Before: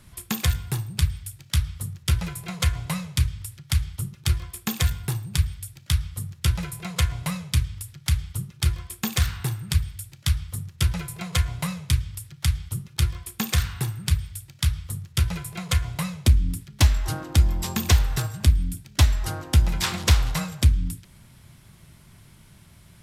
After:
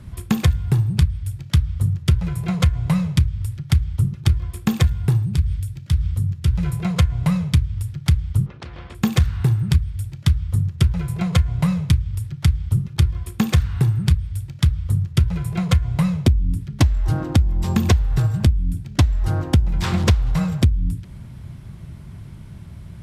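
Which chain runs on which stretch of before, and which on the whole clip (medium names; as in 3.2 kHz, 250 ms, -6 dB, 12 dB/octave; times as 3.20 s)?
5.24–6.66 s: peaking EQ 770 Hz -5 dB 1.9 oct + compression 2:1, threshold -32 dBFS
8.46–8.95 s: compression 4:1, threshold -29 dBFS + tape spacing loss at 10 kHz 37 dB + spectrum-flattening compressor 4:1
whole clip: high-pass 48 Hz; tilt EQ -3 dB/octave; compression 10:1, threshold -18 dBFS; trim +5.5 dB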